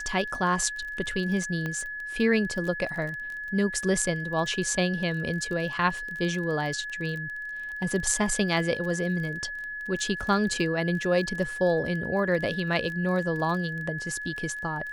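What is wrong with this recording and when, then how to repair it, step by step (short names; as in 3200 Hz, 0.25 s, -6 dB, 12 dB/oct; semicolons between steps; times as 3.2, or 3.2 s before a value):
crackle 23/s -33 dBFS
tone 1700 Hz -33 dBFS
1.66 pop -19 dBFS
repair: de-click; notch 1700 Hz, Q 30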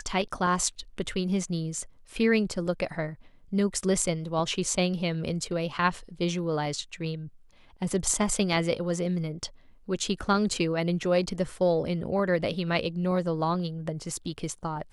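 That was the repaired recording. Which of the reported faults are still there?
none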